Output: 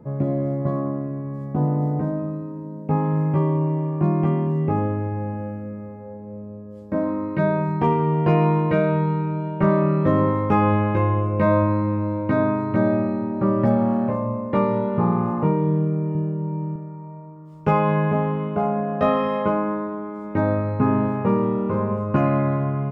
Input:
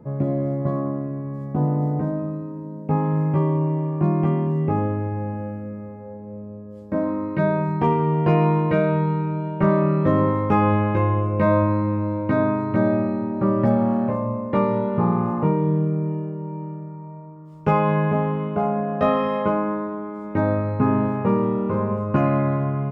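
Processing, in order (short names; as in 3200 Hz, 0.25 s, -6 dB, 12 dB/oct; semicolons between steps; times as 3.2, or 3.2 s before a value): 16.15–16.76 low shelf 140 Hz +12 dB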